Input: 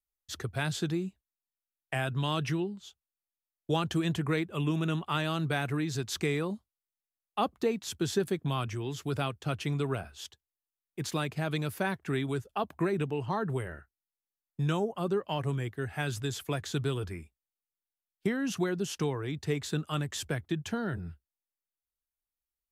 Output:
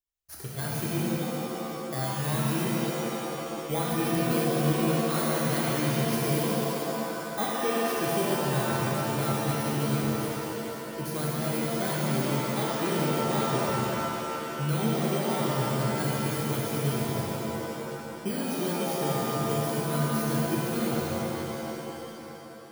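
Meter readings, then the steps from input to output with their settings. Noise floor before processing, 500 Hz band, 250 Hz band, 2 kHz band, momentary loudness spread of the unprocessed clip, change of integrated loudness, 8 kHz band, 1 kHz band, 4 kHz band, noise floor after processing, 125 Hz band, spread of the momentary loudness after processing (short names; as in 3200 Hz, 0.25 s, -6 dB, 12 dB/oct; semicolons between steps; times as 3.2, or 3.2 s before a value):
under -85 dBFS, +5.0 dB, +5.0 dB, +3.0 dB, 9 LU, +4.0 dB, +8.0 dB, +6.5 dB, +3.5 dB, -40 dBFS, +3.5 dB, 8 LU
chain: FFT order left unsorted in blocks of 16 samples; shimmer reverb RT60 3.2 s, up +7 st, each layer -2 dB, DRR -5 dB; gain -4.5 dB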